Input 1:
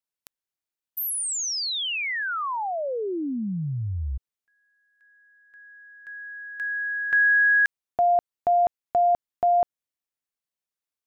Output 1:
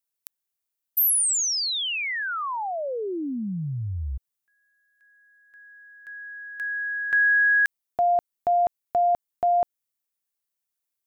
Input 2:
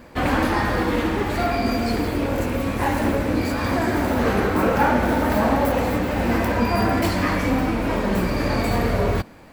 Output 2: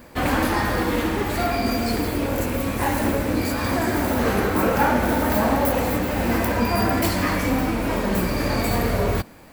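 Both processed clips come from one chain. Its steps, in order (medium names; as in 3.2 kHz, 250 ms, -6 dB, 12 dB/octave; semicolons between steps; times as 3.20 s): treble shelf 7.6 kHz +11.5 dB; trim -1 dB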